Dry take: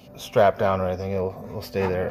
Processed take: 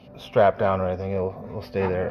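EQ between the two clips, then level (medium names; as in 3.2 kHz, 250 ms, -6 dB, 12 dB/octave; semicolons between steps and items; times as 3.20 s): boxcar filter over 6 samples; 0.0 dB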